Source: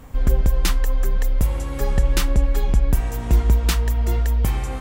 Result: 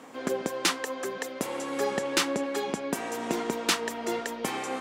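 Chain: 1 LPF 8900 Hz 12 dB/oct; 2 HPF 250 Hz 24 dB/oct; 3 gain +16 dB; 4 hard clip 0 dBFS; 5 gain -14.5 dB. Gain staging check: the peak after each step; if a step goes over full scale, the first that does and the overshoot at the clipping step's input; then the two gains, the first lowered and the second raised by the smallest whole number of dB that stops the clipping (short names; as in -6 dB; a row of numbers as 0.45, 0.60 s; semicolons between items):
-7.0, -11.0, +5.0, 0.0, -14.5 dBFS; step 3, 5.0 dB; step 3 +11 dB, step 5 -9.5 dB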